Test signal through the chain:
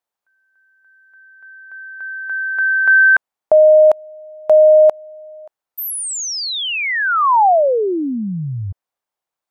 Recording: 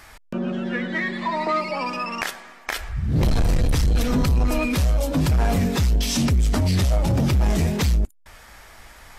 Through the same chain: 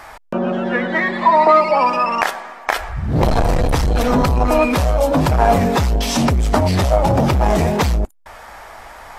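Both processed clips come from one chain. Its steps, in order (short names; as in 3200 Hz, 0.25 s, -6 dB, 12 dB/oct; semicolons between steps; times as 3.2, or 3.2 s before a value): bell 800 Hz +13.5 dB 2 oct; gain +1.5 dB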